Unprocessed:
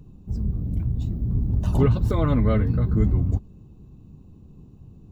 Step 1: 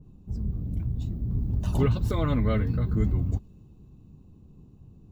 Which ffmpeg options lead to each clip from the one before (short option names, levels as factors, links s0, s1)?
-af "adynamicequalizer=threshold=0.00631:dfrequency=1700:dqfactor=0.7:tfrequency=1700:tqfactor=0.7:attack=5:release=100:ratio=0.375:range=3:mode=boostabove:tftype=highshelf,volume=0.596"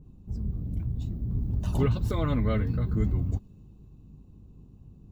-af "aeval=exprs='val(0)+0.00251*(sin(2*PI*50*n/s)+sin(2*PI*2*50*n/s)/2+sin(2*PI*3*50*n/s)/3+sin(2*PI*4*50*n/s)/4+sin(2*PI*5*50*n/s)/5)':c=same,volume=0.841"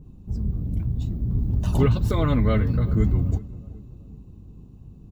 -filter_complex "[0:a]asplit=2[s0][s1];[s1]adelay=377,lowpass=f=1100:p=1,volume=0.126,asplit=2[s2][s3];[s3]adelay=377,lowpass=f=1100:p=1,volume=0.49,asplit=2[s4][s5];[s5]adelay=377,lowpass=f=1100:p=1,volume=0.49,asplit=2[s6][s7];[s7]adelay=377,lowpass=f=1100:p=1,volume=0.49[s8];[s0][s2][s4][s6][s8]amix=inputs=5:normalize=0,volume=1.88"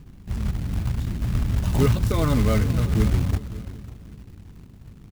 -af "aecho=1:1:550|1100:0.141|0.0325,acrusher=bits=4:mode=log:mix=0:aa=0.000001"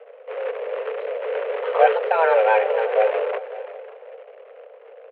-af "highpass=f=160:t=q:w=0.5412,highpass=f=160:t=q:w=1.307,lowpass=f=2500:t=q:w=0.5176,lowpass=f=2500:t=q:w=0.7071,lowpass=f=2500:t=q:w=1.932,afreqshift=320,volume=2.24"